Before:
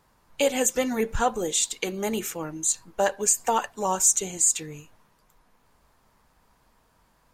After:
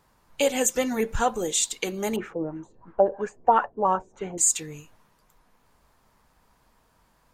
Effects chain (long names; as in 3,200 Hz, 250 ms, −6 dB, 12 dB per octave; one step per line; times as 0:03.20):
0:02.16–0:04.38: auto-filter low-pass sine 3 Hz 380–1,700 Hz